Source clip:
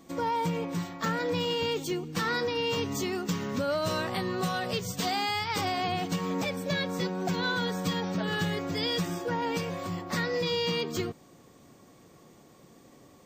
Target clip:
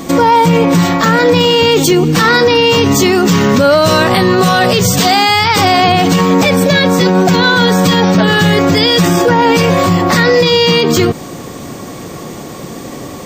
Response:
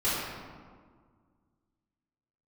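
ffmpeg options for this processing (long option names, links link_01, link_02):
-af "alimiter=level_in=30dB:limit=-1dB:release=50:level=0:latency=1,volume=-1dB"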